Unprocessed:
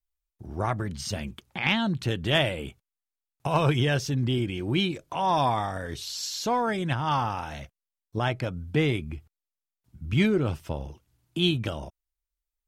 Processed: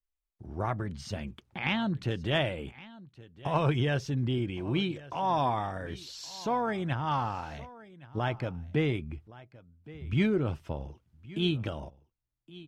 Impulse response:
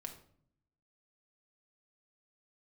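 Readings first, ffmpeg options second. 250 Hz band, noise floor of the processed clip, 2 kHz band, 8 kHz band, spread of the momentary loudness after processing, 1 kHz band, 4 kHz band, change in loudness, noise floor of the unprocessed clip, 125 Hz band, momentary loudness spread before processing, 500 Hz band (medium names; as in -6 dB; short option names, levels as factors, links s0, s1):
-3.5 dB, -85 dBFS, -5.5 dB, -11.5 dB, 16 LU, -4.0 dB, -7.5 dB, -4.0 dB, under -85 dBFS, -3.5 dB, 13 LU, -3.5 dB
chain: -filter_complex "[0:a]lowpass=f=2700:p=1,asplit=2[s0][s1];[s1]aecho=0:1:1118:0.106[s2];[s0][s2]amix=inputs=2:normalize=0,volume=0.668"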